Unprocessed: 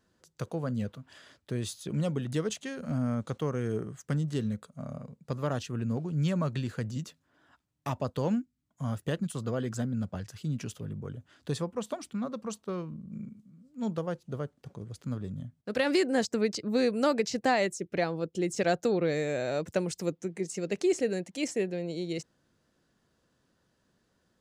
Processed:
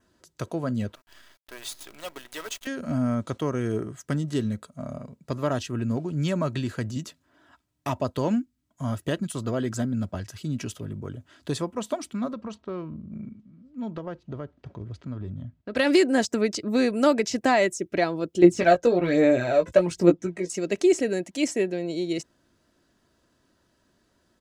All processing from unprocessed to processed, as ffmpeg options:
-filter_complex "[0:a]asettb=1/sr,asplit=3[a][b][c];[a]atrim=end=0.954[d];[b]atrim=start=0.95:end=2.67,asetpts=PTS-STARTPTS,afade=t=in:d=0.004:c=qsin,afade=t=out:st=1.716:d=0.004:c=qsin,highpass=860,acrusher=bits=8:dc=4:mix=0:aa=0.000001,equalizer=f=7.4k:w=0.64:g=-4[e];[c]atrim=start=2.666[f];[d][e]acrossfade=d=0.004:c1=hsin:c2=qsin[g];[g][f]acrossfade=d=0.004:c1=qsin:c2=hsin,asettb=1/sr,asplit=3[h][i][j];[h]atrim=end=12.334[k];[i]atrim=start=12.33:end=15.76,asetpts=PTS-STARTPTS,afade=t=in:d=0.004:c=qsin,afade=t=out:st=3.426:d=0.004:c=qsin,equalizer=f=67:t=o:w=1.2:g=8.5,acompressor=threshold=-35dB:ratio=3:attack=3.2:release=140:knee=1:detection=peak,lowpass=3.3k[l];[j]atrim=start=15.756[m];[k][l]acrossfade=d=0.004:c1=hsin:c2=qsin[n];[n][m]acrossfade=d=0.004:c1=qsin:c2=hsin,asettb=1/sr,asplit=3[o][p][q];[o]atrim=end=18.424[r];[p]atrim=start=18.42:end=20.5,asetpts=PTS-STARTPTS,afade=t=in:d=0.004:c=qsin,afade=t=out:st=2.076:d=0.004:c=qsin,aemphasis=mode=reproduction:type=50kf,aphaser=in_gain=1:out_gain=1:delay=2:decay=0.57:speed=1.2:type=sinusoidal,asplit=2[s][t];[t]adelay=17,volume=-5dB[u];[s][u]amix=inputs=2:normalize=0,atrim=end_sample=91728[v];[q]atrim=start=20.496[w];[r][v]acrossfade=d=0.004:c1=hsin:c2=qsin[x];[x][w]acrossfade=d=0.004:c1=qsin:c2=hsin,aecho=1:1:3.1:0.39,adynamicequalizer=threshold=0.00158:dfrequency=4300:dqfactor=4.8:tfrequency=4300:tqfactor=4.8:attack=5:release=100:ratio=0.375:range=2.5:mode=cutabove:tftype=bell,volume=5dB"

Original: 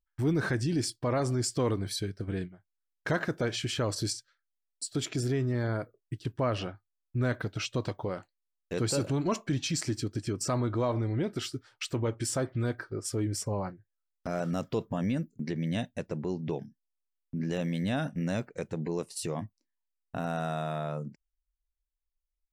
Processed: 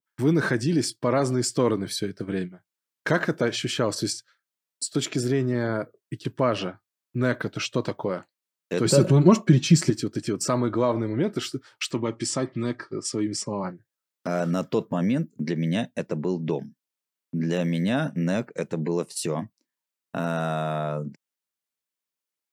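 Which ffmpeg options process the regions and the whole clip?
-filter_complex "[0:a]asettb=1/sr,asplit=3[a][b][c];[a]atrim=end=8.854[d];[b]atrim=start=8.85:end=9.9,asetpts=PTS-STARTPTS,afade=t=in:d=0.004:c=qsin,afade=t=out:st=1.046:d=0.004:c=qsin,lowshelf=f=300:g=10.5,aecho=1:1:5.4:0.54,atrim=end_sample=46305[e];[c]atrim=start=9.896[f];[d][e]acrossfade=d=0.004:c1=hsin:c2=qsin[g];[g][f]acrossfade=d=0.004:c1=qsin:c2=hsin,asettb=1/sr,asplit=3[h][i][j];[h]atrim=end=11.914[k];[i]atrim=start=11.91:end=13.64,asetpts=PTS-STARTPTS,afade=t=in:d=0.004:c=qsin,afade=t=out:st=1.726:d=0.004:c=qsin,asuperstop=centerf=1500:order=4:qfactor=6.5,highpass=110,equalizer=f=480:t=q:w=4:g=-7,equalizer=f=700:t=q:w=4:g=-5,equalizer=f=4.9k:t=q:w=4:g=3,lowpass=f=8.7k:w=0.5412,lowpass=f=8.7k:w=1.3066[l];[j]atrim=start=13.636[m];[k][l]acrossfade=d=0.004:c1=hsin:c2=qsin[n];[n][m]acrossfade=d=0.004:c1=qsin:c2=hsin,highpass=f=140:w=0.5412,highpass=f=140:w=1.3066,bandreject=f=750:w=12,adynamicequalizer=threshold=0.00447:dfrequency=1900:dqfactor=0.7:tfrequency=1900:tqfactor=0.7:attack=5:release=100:ratio=0.375:range=1.5:mode=cutabove:tftype=highshelf,volume=7dB"

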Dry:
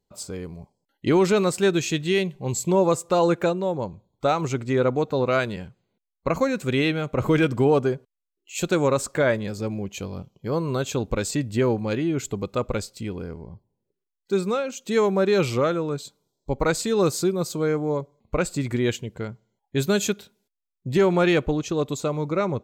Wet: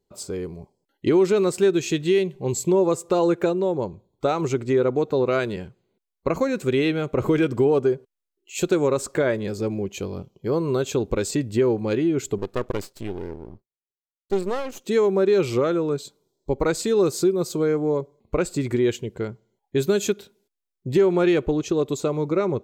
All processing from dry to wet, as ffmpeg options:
-filter_complex "[0:a]asettb=1/sr,asplit=3[a][b][c];[a]atrim=end=12.384[d];[b]atrim=start=12.38:end=14.84,asetpts=PTS-STARTPTS,afade=t=in:d=0.004:c=qsin,afade=t=out:st=2.456:d=0.004:c=qsin,agate=range=-33dB:threshold=-50dB:ratio=3:release=100:detection=peak,aeval=exprs='max(val(0),0)':c=same[e];[c]atrim=start=14.836[f];[d][e]acrossfade=d=0.004:c1=hsin:c2=qsin[g];[g][f]acrossfade=d=0.004:c1=qsin:c2=hsin,equalizer=f=380:w=2.4:g=8.5,acompressor=threshold=-19dB:ratio=2"

